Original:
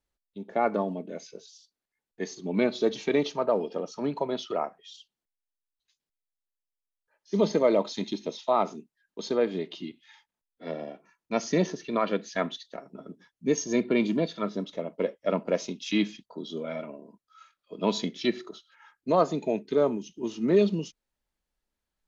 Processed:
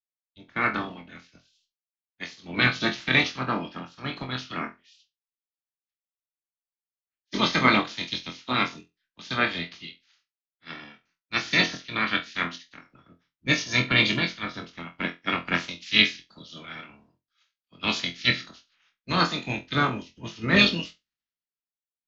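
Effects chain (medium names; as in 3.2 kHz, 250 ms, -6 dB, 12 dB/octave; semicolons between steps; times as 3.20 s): spectral peaks clipped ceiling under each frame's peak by 25 dB; low-pass 5.4 kHz 24 dB/octave; high-order bell 620 Hz -10 dB; flutter echo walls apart 4 m, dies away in 0.23 s; three bands expanded up and down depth 70%; trim +1.5 dB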